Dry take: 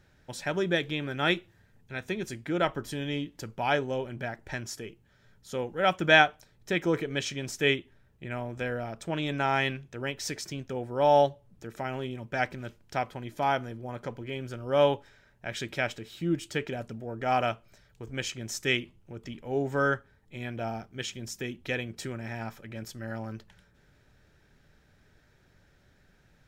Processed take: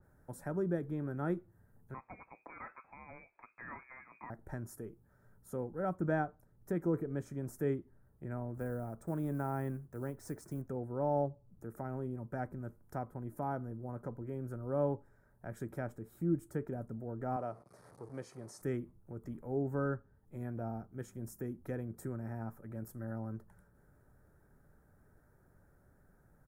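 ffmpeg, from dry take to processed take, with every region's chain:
-filter_complex "[0:a]asettb=1/sr,asplit=3[a][b][c];[a]atrim=end=1.944[d];[b]atrim=start=1.94:end=4.3,asetpts=PTS-STARTPTS,afade=t=in:d=0.004:c=qsin,afade=t=out:st=2.356:d=0.004:c=qsin,volume=27.5dB,asoftclip=hard,volume=-27.5dB,lowpass=f=2.2k:t=q:w=0.5098,lowpass=f=2.2k:t=q:w=0.6013,lowpass=f=2.2k:t=q:w=0.9,lowpass=f=2.2k:t=q:w=2.563,afreqshift=-2600[e];[c]atrim=start=4.296[f];[d][e]acrossfade=d=0.004:c1=hsin:c2=qsin[g];[g][f]acrossfade=d=0.004:c1=qsin:c2=hsin,asettb=1/sr,asplit=3[h][i][j];[h]atrim=end=8.544[k];[i]atrim=start=8.54:end=10.62,asetpts=PTS-STARTPTS,afade=t=in:d=0.004:c=qsin,afade=t=out:st=2.076:d=0.004:c=qsin,lowpass=8.9k,acrusher=bits=5:mode=log:mix=0:aa=0.000001[l];[j]atrim=start=10.616[m];[k][l]acrossfade=d=0.004:c1=hsin:c2=qsin[n];[n][m]acrossfade=d=0.004:c1=qsin:c2=hsin,asettb=1/sr,asplit=3[o][p][q];[o]atrim=end=17.364[r];[p]atrim=start=17.36:end=18.62,asetpts=PTS-STARTPTS,afade=t=in:d=0.004:c=qsin,afade=t=out:st=1.256:d=0.004:c=qsin,aeval=exprs='val(0)+0.5*0.00794*sgn(val(0))':c=same,highpass=200,equalizer=f=220:t=q:w=4:g=-8,equalizer=f=320:t=q:w=4:g=-5,equalizer=f=1.5k:t=q:w=4:g=-7,equalizer=f=4.5k:t=q:w=4:g=8,equalizer=f=7.4k:t=q:w=4:g=-9,lowpass=f=8.6k:w=0.5412,lowpass=f=8.6k:w=1.3066[s];[q]atrim=start=18.616[t];[r][s]acrossfade=d=0.004:c1=hsin:c2=qsin[u];[u][t]acrossfade=d=0.004:c1=qsin:c2=hsin,firequalizer=gain_entry='entry(1300,0);entry(2800,-29);entry(9900,4)':delay=0.05:min_phase=1,acrossover=split=370[v][w];[w]acompressor=threshold=-54dB:ratio=1.5[x];[v][x]amix=inputs=2:normalize=0,adynamicequalizer=threshold=0.00224:dfrequency=2300:dqfactor=0.7:tfrequency=2300:tqfactor=0.7:attack=5:release=100:ratio=0.375:range=2:mode=cutabove:tftype=highshelf,volume=-2.5dB"

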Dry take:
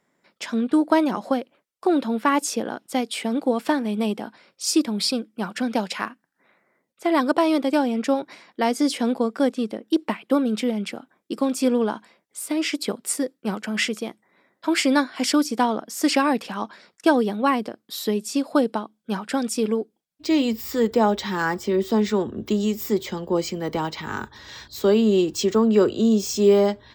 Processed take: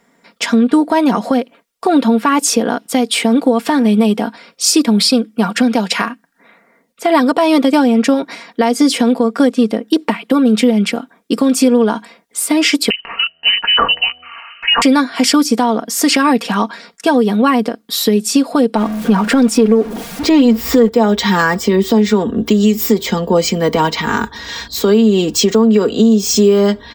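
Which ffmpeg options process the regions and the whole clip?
-filter_complex "[0:a]asettb=1/sr,asplit=3[a][b][c];[a]atrim=end=12.904[d];[b]atrim=start=12.9:end=14.82,asetpts=PTS-STARTPTS,afade=t=in:d=0.004:c=qsin,afade=t=out:st=1.916:d=0.004:c=qsin,lowpass=f=2.7k:t=q:w=0.5098,lowpass=f=2.7k:t=q:w=0.6013,lowpass=f=2.7k:t=q:w=0.9,lowpass=f=2.7k:t=q:w=2.563,afreqshift=-3200,bandreject=f=81.82:t=h:w=4,bandreject=f=163.64:t=h:w=4,bandreject=f=245.46:t=h:w=4,bandreject=f=327.28:t=h:w=4,bandreject=f=409.1:t=h:w=4,bandreject=f=490.92:t=h:w=4,bandreject=f=572.74:t=h:w=4,bandreject=f=654.56:t=h:w=4,bandreject=f=736.38:t=h:w=4,acompressor=mode=upward:threshold=-33dB:ratio=2.5:attack=3.2:release=140:knee=2.83:detection=peak[e];[c]atrim=start=14.816[f];[d][e]acrossfade=d=0.004:c1=hsin:c2=qsin[g];[g][f]acrossfade=d=0.004:c1=qsin:c2=hsin,asettb=1/sr,asplit=3[h][i][j];[h]atrim=end=18.764[k];[i]atrim=start=18.76:end=20.89,asetpts=PTS-STARTPTS,afade=t=in:d=0.004:c=qsin,afade=t=out:st=2.126:d=0.004:c=qsin,aeval=exprs='val(0)+0.5*0.0158*sgn(val(0))':c=same,highshelf=f=2.6k:g=-10.5,acontrast=65[l];[j]atrim=start=20.886[m];[k][l]acrossfade=d=0.004:c1=hsin:c2=qsin[n];[n][m]acrossfade=d=0.004:c1=qsin:c2=hsin,aecho=1:1:4.3:0.57,acompressor=threshold=-20dB:ratio=6,alimiter=level_in=14dB:limit=-1dB:release=50:level=0:latency=1,volume=-1dB"

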